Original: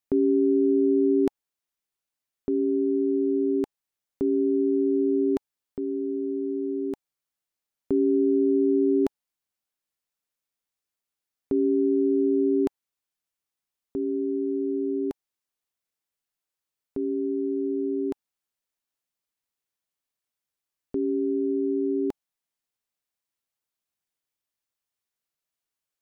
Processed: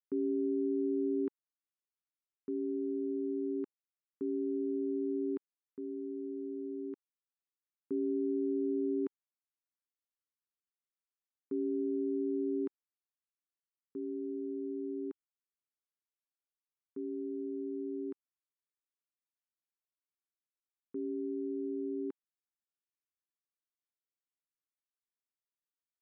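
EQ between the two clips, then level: high-pass 370 Hz 12 dB/octave; Butterworth band-stop 660 Hz, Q 0.75; low-pass 1 kHz 12 dB/octave; -4.0 dB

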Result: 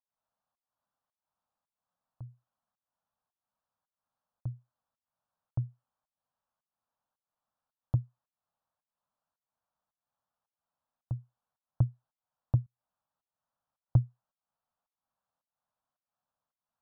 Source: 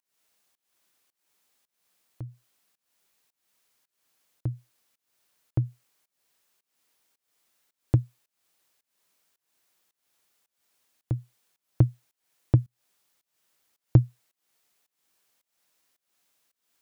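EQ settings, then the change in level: low-pass 1.5 kHz 12 dB/octave; static phaser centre 900 Hz, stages 4; -5.0 dB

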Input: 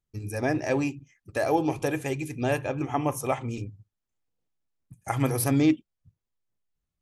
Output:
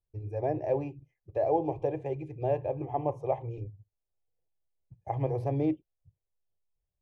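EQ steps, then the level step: low-pass 1.1 kHz 12 dB/octave; static phaser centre 570 Hz, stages 4; 0.0 dB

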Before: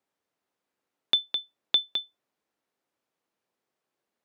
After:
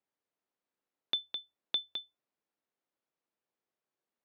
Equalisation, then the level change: distance through air 58 m; hum notches 50/100 Hz; -8.0 dB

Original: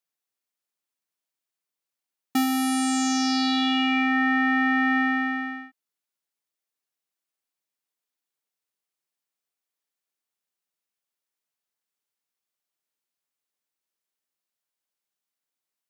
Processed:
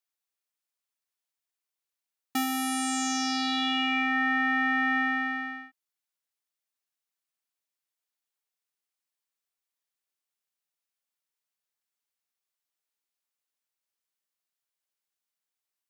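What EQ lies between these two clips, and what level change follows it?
dynamic bell 4.5 kHz, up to -6 dB, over -47 dBFS, Q 5.7; bass shelf 460 Hz -8 dB; -1.5 dB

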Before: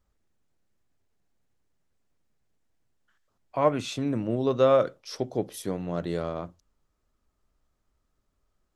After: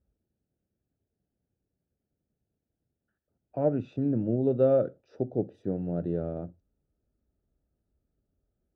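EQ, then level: boxcar filter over 41 samples; high-pass 50 Hz; distance through air 130 m; +2.0 dB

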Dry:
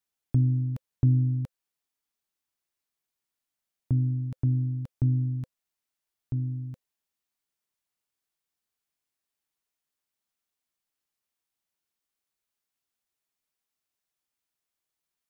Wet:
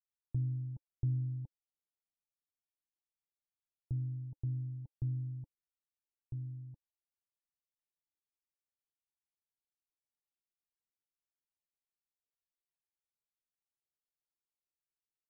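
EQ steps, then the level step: cascade formant filter u; bass shelf 160 Hz +9.5 dB; static phaser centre 650 Hz, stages 4; -1.0 dB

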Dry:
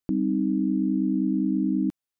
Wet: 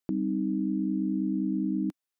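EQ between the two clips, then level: bass shelf 130 Hz -11 dB; dynamic bell 280 Hz, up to -6 dB, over -42 dBFS, Q 6; 0.0 dB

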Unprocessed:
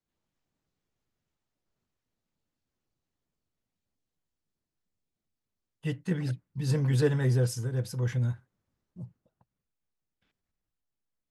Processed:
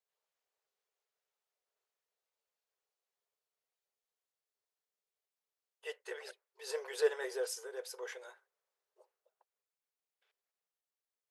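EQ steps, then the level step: brick-wall FIR high-pass 380 Hz; -3.0 dB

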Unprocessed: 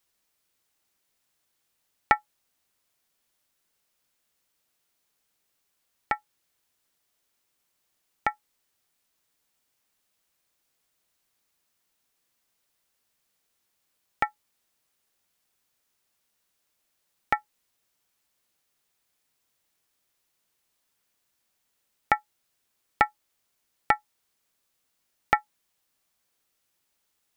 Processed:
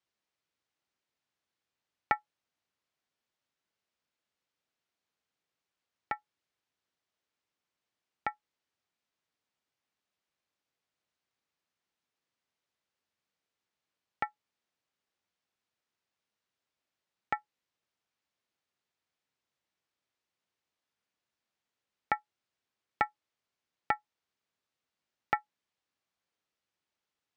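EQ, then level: high-pass 70 Hz; distance through air 110 m; -7.0 dB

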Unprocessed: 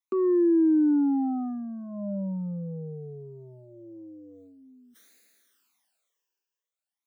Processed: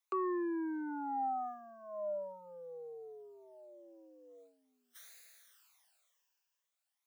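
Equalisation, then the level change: high-pass 580 Hz 24 dB/octave; +3.5 dB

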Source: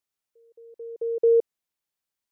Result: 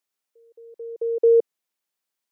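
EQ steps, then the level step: high-pass 200 Hz; +3.0 dB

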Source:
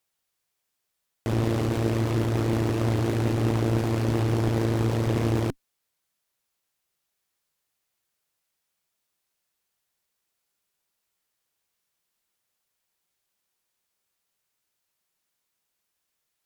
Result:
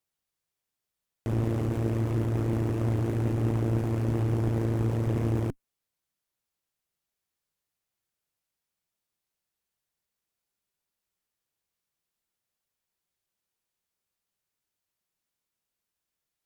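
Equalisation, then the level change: dynamic bell 4.2 kHz, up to -7 dB, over -55 dBFS, Q 1.3; bass shelf 340 Hz +6.5 dB; -7.5 dB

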